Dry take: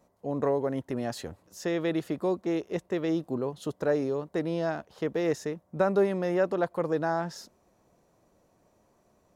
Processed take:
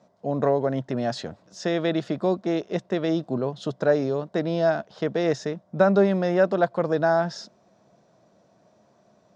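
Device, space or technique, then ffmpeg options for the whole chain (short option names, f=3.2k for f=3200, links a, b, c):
car door speaker: -af "highpass=110,equalizer=f=130:t=q:w=4:g=7,equalizer=f=200:t=q:w=4:g=7,equalizer=f=650:t=q:w=4:g=8,equalizer=f=1.5k:t=q:w=4:g=5,equalizer=f=3.6k:t=q:w=4:g=6,equalizer=f=5.1k:t=q:w=4:g=5,lowpass=f=6.9k:w=0.5412,lowpass=f=6.9k:w=1.3066,volume=2.5dB"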